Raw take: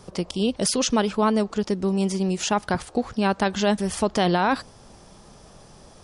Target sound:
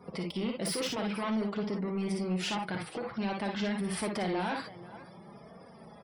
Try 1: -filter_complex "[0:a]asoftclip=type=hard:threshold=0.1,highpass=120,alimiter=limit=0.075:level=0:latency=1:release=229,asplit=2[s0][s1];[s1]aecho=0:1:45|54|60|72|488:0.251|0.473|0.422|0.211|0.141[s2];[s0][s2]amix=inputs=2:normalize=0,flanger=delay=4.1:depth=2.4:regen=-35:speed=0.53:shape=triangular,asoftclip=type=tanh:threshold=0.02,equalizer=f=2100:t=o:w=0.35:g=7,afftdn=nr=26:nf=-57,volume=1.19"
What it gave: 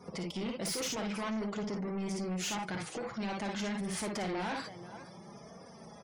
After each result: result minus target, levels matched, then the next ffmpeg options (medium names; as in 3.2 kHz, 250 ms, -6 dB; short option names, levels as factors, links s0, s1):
saturation: distortion +8 dB; 8 kHz band +5.0 dB
-filter_complex "[0:a]asoftclip=type=hard:threshold=0.1,highpass=120,alimiter=limit=0.075:level=0:latency=1:release=229,asplit=2[s0][s1];[s1]aecho=0:1:45|54|60|72|488:0.251|0.473|0.422|0.211|0.141[s2];[s0][s2]amix=inputs=2:normalize=0,flanger=delay=4.1:depth=2.4:regen=-35:speed=0.53:shape=triangular,asoftclip=type=tanh:threshold=0.0473,equalizer=f=2100:t=o:w=0.35:g=7,afftdn=nr=26:nf=-57,volume=1.19"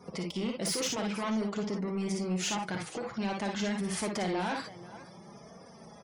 8 kHz band +5.0 dB
-filter_complex "[0:a]asoftclip=type=hard:threshold=0.1,highpass=120,equalizer=f=6600:t=o:w=0.35:g=-14.5,alimiter=limit=0.075:level=0:latency=1:release=229,asplit=2[s0][s1];[s1]aecho=0:1:45|54|60|72|488:0.251|0.473|0.422|0.211|0.141[s2];[s0][s2]amix=inputs=2:normalize=0,flanger=delay=4.1:depth=2.4:regen=-35:speed=0.53:shape=triangular,asoftclip=type=tanh:threshold=0.0473,equalizer=f=2100:t=o:w=0.35:g=7,afftdn=nr=26:nf=-57,volume=1.19"